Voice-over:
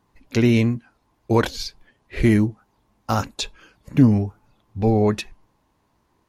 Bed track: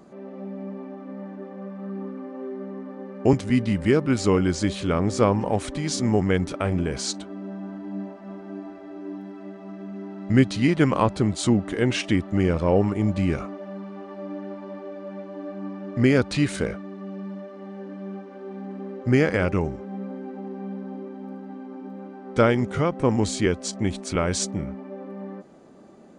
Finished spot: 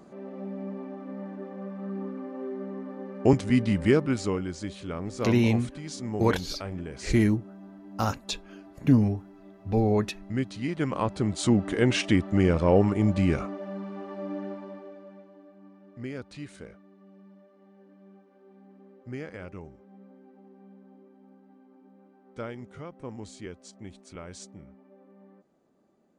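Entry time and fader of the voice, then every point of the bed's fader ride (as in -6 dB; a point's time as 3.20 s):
4.90 s, -5.5 dB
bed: 3.94 s -1.5 dB
4.47 s -11.5 dB
10.59 s -11.5 dB
11.66 s -0.5 dB
14.45 s -0.5 dB
15.50 s -18.5 dB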